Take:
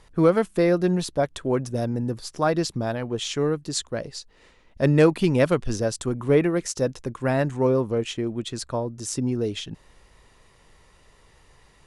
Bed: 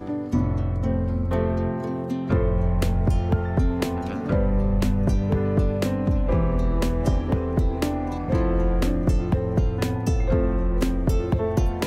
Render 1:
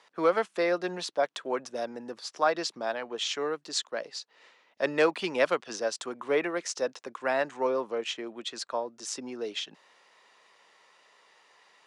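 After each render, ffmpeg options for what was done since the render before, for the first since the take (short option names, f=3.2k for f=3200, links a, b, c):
-filter_complex "[0:a]highpass=f=200:w=0.5412,highpass=f=200:w=1.3066,acrossover=split=530 7000:gain=0.158 1 0.112[a][b][c];[a][b][c]amix=inputs=3:normalize=0"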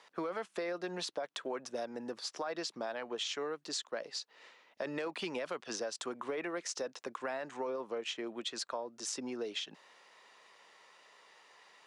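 -af "alimiter=limit=-22dB:level=0:latency=1:release=16,acompressor=threshold=-35dB:ratio=6"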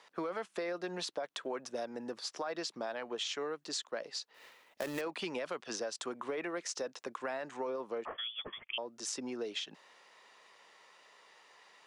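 -filter_complex "[0:a]asettb=1/sr,asplit=3[a][b][c];[a]atrim=end=4.344[d];[b]atrim=start=4.34:end=5.01,asetpts=PTS-STARTPTS,afade=t=in:d=0.004:c=qsin,afade=t=out:st=0.666:d=0.004:c=qsin,acrusher=bits=2:mode=log:mix=0:aa=0.000001[e];[c]atrim=start=5.006[f];[d][e]acrossfade=d=0.004:c1=hsin:c2=qsin[g];[g][f]acrossfade=d=0.004:c1=qsin:c2=hsin,asettb=1/sr,asplit=3[h][i][j];[h]atrim=end=8.054[k];[i]atrim=start=8.05:end=8.78,asetpts=PTS-STARTPTS,afade=t=in:d=0.004:c=qsin,afade=t=out:st=0.726:d=0.004:c=qsin,lowpass=f=3.1k:t=q:w=0.5098,lowpass=f=3.1k:t=q:w=0.6013,lowpass=f=3.1k:t=q:w=0.9,lowpass=f=3.1k:t=q:w=2.563,afreqshift=-3700[l];[j]atrim=start=8.776[m];[k][l]acrossfade=d=0.004:c1=hsin:c2=qsin[n];[n][m]acrossfade=d=0.004:c1=qsin:c2=hsin"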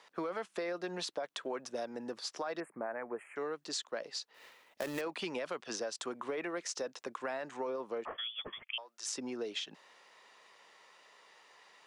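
-filter_complex "[0:a]asettb=1/sr,asplit=3[a][b][c];[a]atrim=end=2.604[d];[b]atrim=start=2.6:end=3.36,asetpts=PTS-STARTPTS,afade=t=in:d=0.004:c=qsin,afade=t=out:st=0.756:d=0.004:c=qsin,asuperstop=centerf=4600:order=12:qfactor=0.7[e];[c]atrim=start=3.356[f];[d][e]acrossfade=d=0.004:c1=hsin:c2=qsin[g];[g][f]acrossfade=d=0.004:c1=qsin:c2=hsin,asettb=1/sr,asplit=3[h][i][j];[h]atrim=end=8.634[k];[i]atrim=start=8.63:end=9.06,asetpts=PTS-STARTPTS,afade=t=in:d=0.004:c=qsin,afade=t=out:st=0.426:d=0.004:c=qsin,highpass=1.1k[l];[j]atrim=start=9.056[m];[k][l]acrossfade=d=0.004:c1=hsin:c2=qsin[n];[n][m]acrossfade=d=0.004:c1=qsin:c2=hsin"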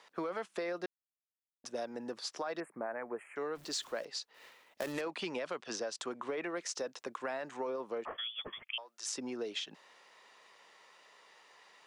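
-filter_complex "[0:a]asettb=1/sr,asplit=3[a][b][c];[a]atrim=end=3.554[d];[b]atrim=start=3.55:end=4.05,asetpts=PTS-STARTPTS,afade=t=in:d=0.004:c=qsin,afade=t=out:st=0.496:d=0.004:c=qsin,aeval=exprs='val(0)+0.5*0.00282*sgn(val(0))':c=same[e];[c]atrim=start=4.046[f];[d][e]acrossfade=d=0.004:c1=hsin:c2=qsin[g];[g][f]acrossfade=d=0.004:c1=qsin:c2=hsin,asettb=1/sr,asplit=3[h][i][j];[h]atrim=end=4.924[k];[i]atrim=start=4.92:end=6.56,asetpts=PTS-STARTPTS,afade=t=in:d=0.004:c=qsin,afade=t=out:st=1.636:d=0.004:c=qsin,lowpass=9.4k[l];[j]atrim=start=6.556[m];[k][l]acrossfade=d=0.004:c1=hsin:c2=qsin[n];[n][m]acrossfade=d=0.004:c1=qsin:c2=hsin,asplit=3[o][p][q];[o]atrim=end=0.86,asetpts=PTS-STARTPTS,afade=t=out:st=0.856:d=0.004:c=hsin[r];[p]atrim=start=0.86:end=1.64,asetpts=PTS-STARTPTS,volume=0[s];[q]atrim=start=1.64,asetpts=PTS-STARTPTS,afade=t=in:d=0.004:c=hsin[t];[r][s][t]concat=n=3:v=0:a=1"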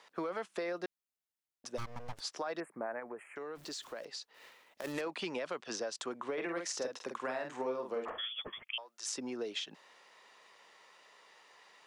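-filter_complex "[0:a]asplit=3[a][b][c];[a]afade=t=out:st=1.77:d=0.02[d];[b]aeval=exprs='abs(val(0))':c=same,afade=t=in:st=1.77:d=0.02,afade=t=out:st=2.19:d=0.02[e];[c]afade=t=in:st=2.19:d=0.02[f];[d][e][f]amix=inputs=3:normalize=0,asplit=3[g][h][i];[g]afade=t=out:st=2.99:d=0.02[j];[h]acompressor=threshold=-39dB:ratio=6:attack=3.2:release=140:knee=1:detection=peak,afade=t=in:st=2.99:d=0.02,afade=t=out:st=4.83:d=0.02[k];[i]afade=t=in:st=4.83:d=0.02[l];[j][k][l]amix=inputs=3:normalize=0,asettb=1/sr,asplit=3[m][n][o];[m]atrim=end=6.334[p];[n]atrim=start=6.33:end=8.39,asetpts=PTS-STARTPTS,afade=t=in:d=0.004:c=qsin,afade=t=out:st=2.056:d=0.004:c=qsin,asplit=2[q][r];[r]adelay=47,volume=-5dB[s];[q][s]amix=inputs=2:normalize=0,atrim=end_sample=90846[t];[o]atrim=start=8.386[u];[p][t]acrossfade=d=0.004:c1=hsin:c2=qsin[v];[v][u]acrossfade=d=0.004:c1=qsin:c2=hsin"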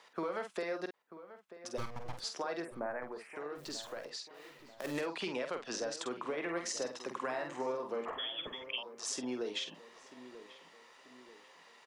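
-filter_complex "[0:a]asplit=2[a][b];[b]adelay=48,volume=-7.5dB[c];[a][c]amix=inputs=2:normalize=0,asplit=2[d][e];[e]adelay=938,lowpass=f=1.7k:p=1,volume=-14dB,asplit=2[f][g];[g]adelay=938,lowpass=f=1.7k:p=1,volume=0.49,asplit=2[h][i];[i]adelay=938,lowpass=f=1.7k:p=1,volume=0.49,asplit=2[j][k];[k]adelay=938,lowpass=f=1.7k:p=1,volume=0.49,asplit=2[l][m];[m]adelay=938,lowpass=f=1.7k:p=1,volume=0.49[n];[d][f][h][j][l][n]amix=inputs=6:normalize=0"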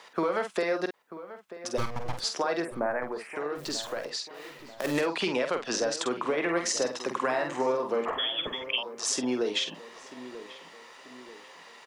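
-af "volume=9.5dB"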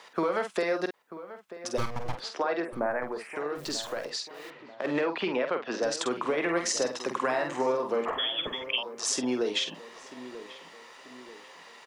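-filter_complex "[0:a]asettb=1/sr,asplit=3[a][b][c];[a]atrim=end=2.154[d];[b]atrim=start=2.15:end=2.73,asetpts=PTS-STARTPTS,afade=t=in:d=0.004:c=qsin,afade=t=out:st=0.576:d=0.004:c=qsin,acrossover=split=190 3900:gain=0.224 1 0.158[e][f][g];[e][f][g]amix=inputs=3:normalize=0[h];[c]atrim=start=2.726[i];[d][h]acrossfade=d=0.004:c1=hsin:c2=qsin[j];[j][i]acrossfade=d=0.004:c1=qsin:c2=hsin,asettb=1/sr,asplit=3[k][l][m];[k]atrim=end=4.504[n];[l]atrim=start=4.5:end=5.83,asetpts=PTS-STARTPTS,afade=t=in:d=0.004:c=qsin,afade=t=out:st=1.326:d=0.004:c=qsin,highpass=170,lowpass=2.7k[o];[m]atrim=start=5.826[p];[n][o]acrossfade=d=0.004:c1=hsin:c2=qsin[q];[q][p]acrossfade=d=0.004:c1=qsin:c2=hsin"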